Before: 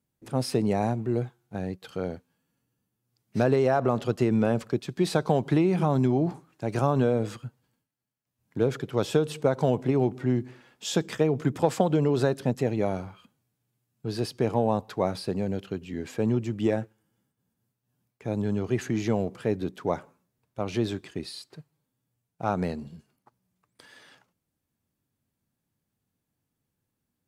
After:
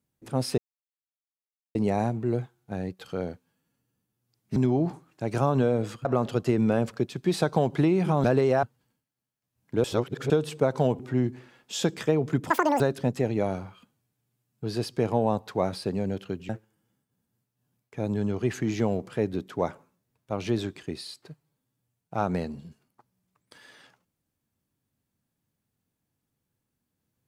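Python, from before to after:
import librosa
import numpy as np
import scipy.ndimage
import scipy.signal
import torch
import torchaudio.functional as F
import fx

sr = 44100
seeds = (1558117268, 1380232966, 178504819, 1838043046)

y = fx.edit(x, sr, fx.insert_silence(at_s=0.58, length_s=1.17),
    fx.swap(start_s=3.39, length_s=0.39, other_s=5.97, other_length_s=1.49),
    fx.reverse_span(start_s=8.67, length_s=0.46),
    fx.cut(start_s=9.82, length_s=0.29),
    fx.speed_span(start_s=11.62, length_s=0.6, speed=1.99),
    fx.cut(start_s=15.91, length_s=0.86), tone=tone)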